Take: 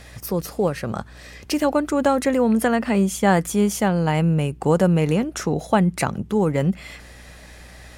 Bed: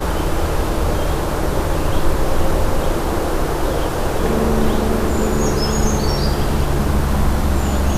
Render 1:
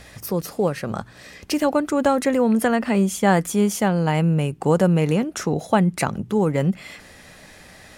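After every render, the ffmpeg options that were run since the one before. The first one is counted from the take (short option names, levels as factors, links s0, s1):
-af "bandreject=f=60:t=h:w=4,bandreject=f=120:t=h:w=4"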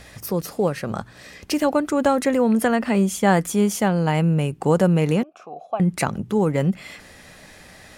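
-filter_complex "[0:a]asettb=1/sr,asplit=3[s0][s1][s2];[s0]atrim=end=5.234[s3];[s1]atrim=start=5.23:end=5.8,asetpts=PTS-STARTPTS,afade=t=in:d=0.004:c=qsin,afade=t=out:st=0.566:d=0.004:c=qsin,asplit=3[s4][s5][s6];[s4]bandpass=f=730:t=q:w=8,volume=1[s7];[s5]bandpass=f=1090:t=q:w=8,volume=0.501[s8];[s6]bandpass=f=2440:t=q:w=8,volume=0.355[s9];[s7][s8][s9]amix=inputs=3:normalize=0[s10];[s2]atrim=start=5.796[s11];[s3][s10]acrossfade=d=0.004:c1=hsin:c2=qsin[s12];[s12][s11]acrossfade=d=0.004:c1=qsin:c2=hsin"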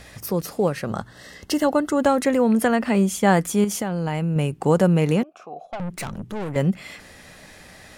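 -filter_complex "[0:a]asettb=1/sr,asplit=3[s0][s1][s2];[s0]atrim=end=0.874[s3];[s1]atrim=start=0.87:end=2.01,asetpts=PTS-STARTPTS,afade=t=in:d=0.004:c=qsin,afade=t=out:st=1.136:d=0.004:c=qsin,asuperstop=centerf=2400:order=20:qfactor=6.6[s4];[s2]atrim=start=2.006[s5];[s3][s4]acrossfade=d=0.004:c1=hsin:c2=qsin[s6];[s6][s5]acrossfade=d=0.004:c1=qsin:c2=hsin,asettb=1/sr,asplit=3[s7][s8][s9];[s7]atrim=end=3.644[s10];[s8]atrim=start=3.64:end=4.36,asetpts=PTS-STARTPTS,afade=t=in:d=0.004:c=qsin,afade=t=out:st=0.716:d=0.004:c=qsin,acompressor=threshold=0.1:ratio=10:attack=3.2:release=140:knee=1:detection=peak[s11];[s9]atrim=start=4.356[s12];[s10][s11]acrossfade=d=0.004:c1=hsin:c2=qsin[s13];[s13][s12]acrossfade=d=0.004:c1=qsin:c2=hsin,asettb=1/sr,asplit=3[s14][s15][s16];[s14]atrim=end=5.654[s17];[s15]atrim=start=5.65:end=6.56,asetpts=PTS-STARTPTS,afade=t=in:d=0.004:c=qsin,afade=t=out:st=0.906:d=0.004:c=qsin,aeval=exprs='(tanh(22.4*val(0)+0.45)-tanh(0.45))/22.4':c=same[s18];[s16]atrim=start=6.556[s19];[s17][s18]acrossfade=d=0.004:c1=hsin:c2=qsin[s20];[s20][s19]acrossfade=d=0.004:c1=qsin:c2=hsin"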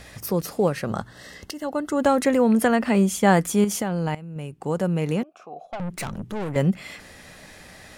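-filter_complex "[0:a]asplit=3[s0][s1][s2];[s0]atrim=end=1.51,asetpts=PTS-STARTPTS,afade=t=out:st=1.506:d=0.004:c=hsin:silence=0.125893[s3];[s1]atrim=start=1.51:end=4.15,asetpts=PTS-STARTPTS,afade=t=in:d=0.63:silence=0.125893,afade=t=out:st=2.636:d=0.004:c=hsin:silence=0.149624[s4];[s2]atrim=start=4.15,asetpts=PTS-STARTPTS,afade=t=in:d=1.86:silence=0.149624[s5];[s3][s4][s5]concat=n=3:v=0:a=1"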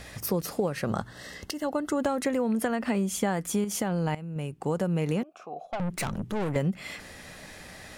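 -af "acompressor=threshold=0.0708:ratio=12"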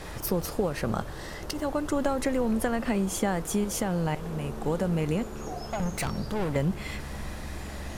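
-filter_complex "[1:a]volume=0.0891[s0];[0:a][s0]amix=inputs=2:normalize=0"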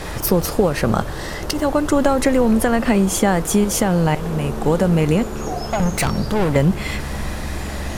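-af "volume=3.55,alimiter=limit=0.708:level=0:latency=1"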